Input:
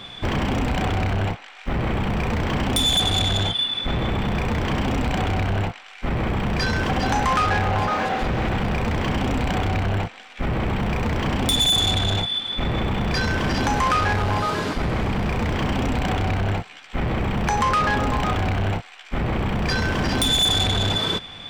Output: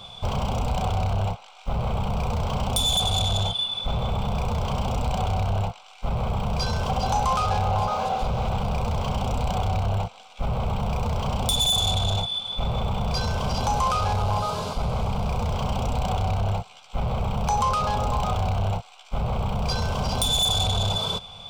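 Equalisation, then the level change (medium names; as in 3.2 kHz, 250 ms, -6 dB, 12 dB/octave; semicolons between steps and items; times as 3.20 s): static phaser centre 750 Hz, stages 4; 0.0 dB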